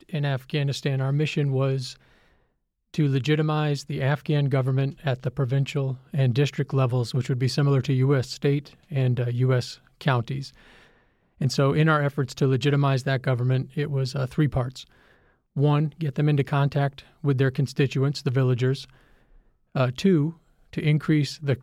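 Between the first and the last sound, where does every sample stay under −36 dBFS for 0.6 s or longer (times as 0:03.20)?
0:01.96–0:02.94
0:10.48–0:11.41
0:14.82–0:15.56
0:18.84–0:19.75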